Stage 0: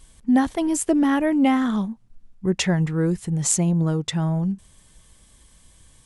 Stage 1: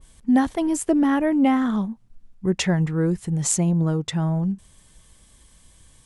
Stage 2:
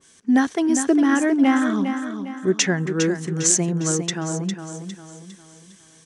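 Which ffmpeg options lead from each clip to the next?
ffmpeg -i in.wav -af "adynamicequalizer=threshold=0.00891:dfrequency=2100:dqfactor=0.7:tfrequency=2100:tqfactor=0.7:attack=5:release=100:ratio=0.375:range=2.5:mode=cutabove:tftype=highshelf" out.wav
ffmpeg -i in.wav -af "highpass=240,equalizer=frequency=400:width_type=q:width=4:gain=4,equalizer=frequency=580:width_type=q:width=4:gain=-6,equalizer=frequency=890:width_type=q:width=4:gain=-6,equalizer=frequency=1600:width_type=q:width=4:gain=5,equalizer=frequency=6000:width_type=q:width=4:gain=9,lowpass=frequency=9400:width=0.5412,lowpass=frequency=9400:width=1.3066,aecho=1:1:405|810|1215|1620|2025:0.398|0.163|0.0669|0.0274|0.0112,volume=3dB" out.wav

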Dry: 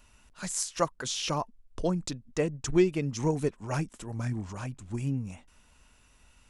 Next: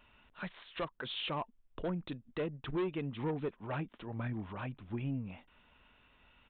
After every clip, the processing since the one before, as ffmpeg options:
ffmpeg -i in.wav -af "lowshelf=frequency=120:gain=-10,aresample=8000,asoftclip=type=tanh:threshold=-26dB,aresample=44100,alimiter=level_in=5.5dB:limit=-24dB:level=0:latency=1:release=488,volume=-5.5dB" out.wav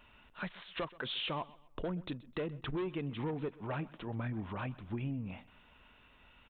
ffmpeg -i in.wav -af "acompressor=threshold=-37dB:ratio=6,aecho=1:1:128|256|384:0.0944|0.0312|0.0103,volume=3dB" out.wav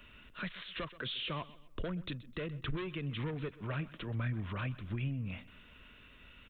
ffmpeg -i in.wav -filter_complex "[0:a]equalizer=frequency=830:width_type=o:width=0.64:gain=-14,acrossover=split=150|570[link_01][link_02][link_03];[link_02]acompressor=threshold=-53dB:ratio=4[link_04];[link_03]alimiter=level_in=14dB:limit=-24dB:level=0:latency=1:release=41,volume=-14dB[link_05];[link_01][link_04][link_05]amix=inputs=3:normalize=0,volume=6dB" out.wav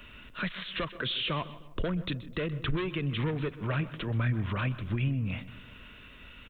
ffmpeg -i in.wav -filter_complex "[0:a]asplit=2[link_01][link_02];[link_02]adelay=154,lowpass=frequency=1100:poles=1,volume=-15.5dB,asplit=2[link_03][link_04];[link_04]adelay=154,lowpass=frequency=1100:poles=1,volume=0.5,asplit=2[link_05][link_06];[link_06]adelay=154,lowpass=frequency=1100:poles=1,volume=0.5,asplit=2[link_07][link_08];[link_08]adelay=154,lowpass=frequency=1100:poles=1,volume=0.5,asplit=2[link_09][link_10];[link_10]adelay=154,lowpass=frequency=1100:poles=1,volume=0.5[link_11];[link_01][link_03][link_05][link_07][link_09][link_11]amix=inputs=6:normalize=0,volume=7dB" out.wav

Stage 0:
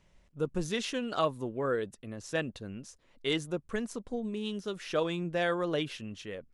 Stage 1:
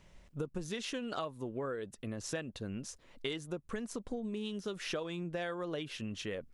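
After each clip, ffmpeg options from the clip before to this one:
ffmpeg -i in.wav -af "acompressor=threshold=-40dB:ratio=10,volume=5dB" out.wav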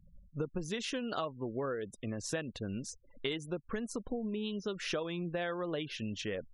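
ffmpeg -i in.wav -af "afftfilt=real='re*gte(hypot(re,im),0.00282)':imag='im*gte(hypot(re,im),0.00282)':win_size=1024:overlap=0.75,volume=2dB" out.wav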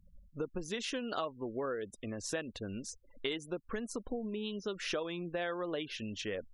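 ffmpeg -i in.wav -af "equalizer=frequency=140:width=1.7:gain=-8" out.wav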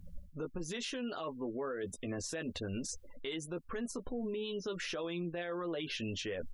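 ffmpeg -i in.wav -filter_complex "[0:a]areverse,acompressor=threshold=-44dB:ratio=6,areverse,asplit=2[link_01][link_02];[link_02]adelay=12,volume=-6dB[link_03];[link_01][link_03]amix=inputs=2:normalize=0,alimiter=level_in=18dB:limit=-24dB:level=0:latency=1:release=76,volume=-18dB,volume=11.5dB" out.wav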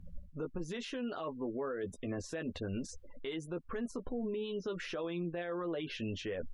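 ffmpeg -i in.wav -af "highshelf=frequency=3600:gain=-11.5,volume=1dB" out.wav

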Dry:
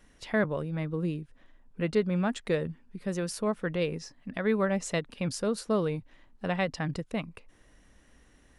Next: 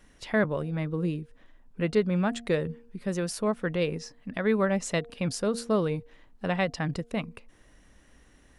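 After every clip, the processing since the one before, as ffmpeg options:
ffmpeg -i in.wav -af "bandreject=frequency=234.1:width_type=h:width=4,bandreject=frequency=468.2:width_type=h:width=4,bandreject=frequency=702.3:width_type=h:width=4,volume=2dB" out.wav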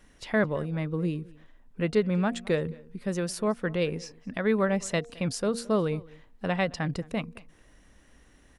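ffmpeg -i in.wav -filter_complex "[0:a]asplit=2[link_01][link_02];[link_02]adelay=215.7,volume=-23dB,highshelf=frequency=4000:gain=-4.85[link_03];[link_01][link_03]amix=inputs=2:normalize=0" out.wav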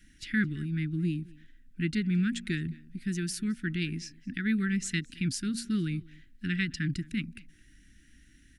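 ffmpeg -i in.wav -af "asuperstop=centerf=710:order=12:qfactor=0.61" out.wav

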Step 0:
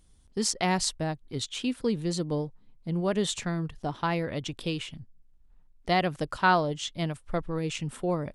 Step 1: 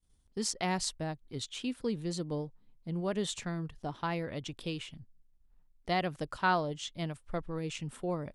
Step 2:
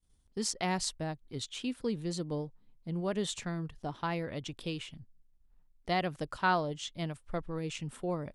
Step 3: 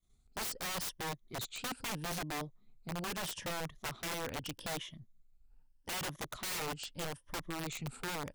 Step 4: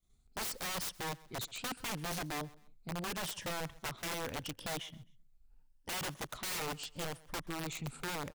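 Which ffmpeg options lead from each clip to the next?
ffmpeg -i in.wav -af "agate=range=-33dB:threshold=-55dB:ratio=3:detection=peak,volume=-6dB" out.wav
ffmpeg -i in.wav -af anull out.wav
ffmpeg -i in.wav -af "afftfilt=real='re*pow(10,11/40*sin(2*PI*(1.2*log(max(b,1)*sr/1024/100)/log(2)-(0.79)*(pts-256)/sr)))':imag='im*pow(10,11/40*sin(2*PI*(1.2*log(max(b,1)*sr/1024/100)/log(2)-(0.79)*(pts-256)/sr)))':win_size=1024:overlap=0.75,aeval=exprs='(mod(33.5*val(0)+1,2)-1)/33.5':channel_layout=same,volume=-2.5dB" out.wav
ffmpeg -i in.wav -af "aecho=1:1:131|262:0.0794|0.0262" out.wav

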